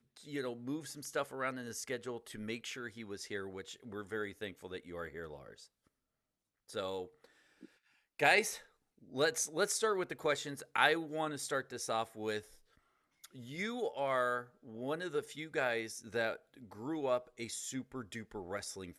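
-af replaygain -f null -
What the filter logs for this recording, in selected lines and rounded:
track_gain = +17.5 dB
track_peak = 0.175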